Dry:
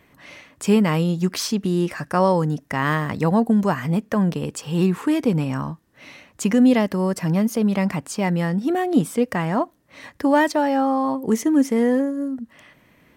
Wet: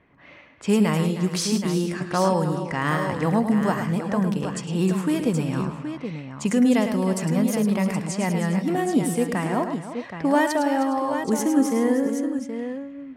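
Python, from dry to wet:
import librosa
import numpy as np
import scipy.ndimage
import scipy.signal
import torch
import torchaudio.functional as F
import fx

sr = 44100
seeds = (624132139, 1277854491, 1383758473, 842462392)

y = fx.dynamic_eq(x, sr, hz=9500.0, q=0.95, threshold_db=-50.0, ratio=4.0, max_db=7)
y = fx.echo_multitap(y, sr, ms=(69, 107, 311, 411, 774), db=(-19.0, -8.0, -12.5, -18.0, -8.5))
y = fx.env_lowpass(y, sr, base_hz=2200.0, full_db=-15.5)
y = F.gain(torch.from_numpy(y), -3.5).numpy()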